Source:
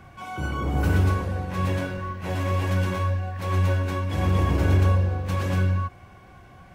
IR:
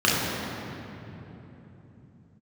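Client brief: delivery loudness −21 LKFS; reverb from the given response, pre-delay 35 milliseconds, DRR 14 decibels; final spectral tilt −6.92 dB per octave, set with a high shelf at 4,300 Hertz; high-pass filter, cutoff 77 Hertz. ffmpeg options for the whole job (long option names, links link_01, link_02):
-filter_complex "[0:a]highpass=77,highshelf=frequency=4300:gain=-4.5,asplit=2[link_01][link_02];[1:a]atrim=start_sample=2205,adelay=35[link_03];[link_02][link_03]afir=irnorm=-1:irlink=0,volume=-33.5dB[link_04];[link_01][link_04]amix=inputs=2:normalize=0,volume=4.5dB"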